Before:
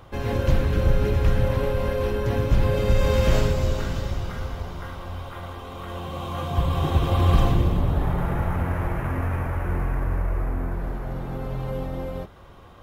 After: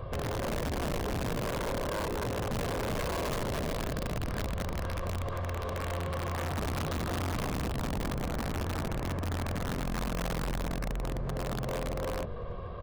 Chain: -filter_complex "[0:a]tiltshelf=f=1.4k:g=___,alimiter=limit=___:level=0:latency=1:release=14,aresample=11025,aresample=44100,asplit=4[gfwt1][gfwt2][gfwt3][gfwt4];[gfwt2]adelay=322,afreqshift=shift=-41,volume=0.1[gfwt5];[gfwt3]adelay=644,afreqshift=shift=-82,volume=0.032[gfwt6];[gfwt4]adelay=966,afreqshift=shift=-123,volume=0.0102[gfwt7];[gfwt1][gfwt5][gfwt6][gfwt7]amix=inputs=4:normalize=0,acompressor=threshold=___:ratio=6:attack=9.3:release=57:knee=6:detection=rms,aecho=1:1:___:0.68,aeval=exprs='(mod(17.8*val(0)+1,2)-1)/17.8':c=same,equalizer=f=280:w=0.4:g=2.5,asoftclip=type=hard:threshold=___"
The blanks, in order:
5, 0.266, 0.0224, 1.8, 0.0299